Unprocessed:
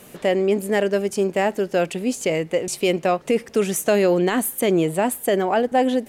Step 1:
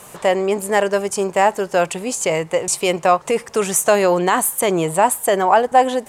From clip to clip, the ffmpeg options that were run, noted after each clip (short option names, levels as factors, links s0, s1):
-af "equalizer=f=125:t=o:w=1:g=4,equalizer=f=250:t=o:w=1:g=-7,equalizer=f=1000:t=o:w=1:g=12,equalizer=f=8000:t=o:w=1:g=9,volume=1.12"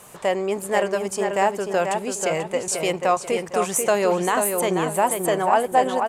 -filter_complex "[0:a]asplit=2[s0][s1];[s1]adelay=488,lowpass=f=3800:p=1,volume=0.562,asplit=2[s2][s3];[s3]adelay=488,lowpass=f=3800:p=1,volume=0.33,asplit=2[s4][s5];[s5]adelay=488,lowpass=f=3800:p=1,volume=0.33,asplit=2[s6][s7];[s7]adelay=488,lowpass=f=3800:p=1,volume=0.33[s8];[s0][s2][s4][s6][s8]amix=inputs=5:normalize=0,volume=0.531"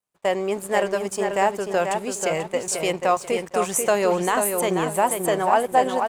-af "aeval=exprs='sgn(val(0))*max(abs(val(0))-0.00531,0)':c=same,agate=range=0.0224:threshold=0.0316:ratio=3:detection=peak"